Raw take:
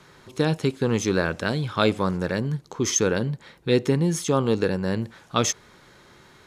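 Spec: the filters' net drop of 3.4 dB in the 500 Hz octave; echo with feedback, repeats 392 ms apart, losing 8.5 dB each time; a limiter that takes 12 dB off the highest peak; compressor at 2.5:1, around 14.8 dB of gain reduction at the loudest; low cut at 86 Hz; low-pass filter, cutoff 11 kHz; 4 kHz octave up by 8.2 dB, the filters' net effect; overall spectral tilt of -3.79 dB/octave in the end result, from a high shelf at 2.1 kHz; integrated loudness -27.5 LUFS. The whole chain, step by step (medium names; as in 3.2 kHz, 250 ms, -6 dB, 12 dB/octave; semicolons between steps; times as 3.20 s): high-pass 86 Hz; low-pass 11 kHz; peaking EQ 500 Hz -4.5 dB; treble shelf 2.1 kHz +7 dB; peaking EQ 4 kHz +3.5 dB; compression 2.5:1, threshold -35 dBFS; peak limiter -25 dBFS; feedback delay 392 ms, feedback 38%, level -8.5 dB; trim +9.5 dB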